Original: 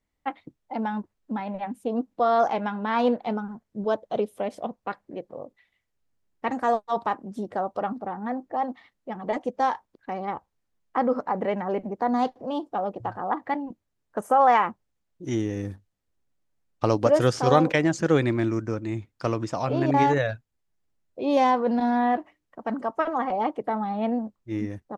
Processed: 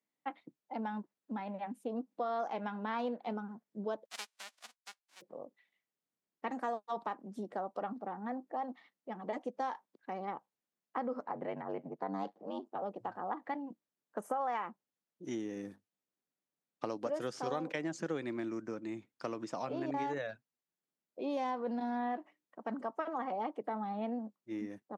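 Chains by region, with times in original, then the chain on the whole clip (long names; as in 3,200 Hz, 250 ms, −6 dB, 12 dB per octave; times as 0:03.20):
0:04.05–0:05.20: spectral envelope flattened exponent 0.1 + band-pass filter 720–6,900 Hz + expander for the loud parts, over −50 dBFS
0:11.26–0:12.82: high-shelf EQ 5,500 Hz −7.5 dB + ring modulation 48 Hz
whole clip: downward compressor 4 to 1, threshold −25 dBFS; high-pass filter 170 Hz 24 dB per octave; level −8.5 dB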